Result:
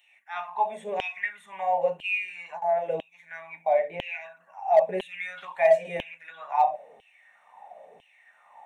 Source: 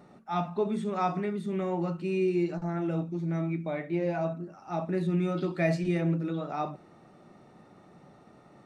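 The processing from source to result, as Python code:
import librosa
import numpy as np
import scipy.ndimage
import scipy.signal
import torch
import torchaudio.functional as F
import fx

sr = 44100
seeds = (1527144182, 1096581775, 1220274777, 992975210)

p1 = fx.filter_lfo_highpass(x, sr, shape='saw_down', hz=1.0, low_hz=380.0, high_hz=3100.0, q=7.5)
p2 = fx.fixed_phaser(p1, sr, hz=1300.0, stages=6)
p3 = fx.comb(p2, sr, ms=5.0, depth=0.68, at=(4.87, 5.45))
p4 = np.clip(10.0 ** (16.0 / 20.0) * p3, -1.0, 1.0) / 10.0 ** (16.0 / 20.0)
p5 = p3 + F.gain(torch.from_numpy(p4), -3.5).numpy()
y = F.gain(torch.from_numpy(p5), -1.5).numpy()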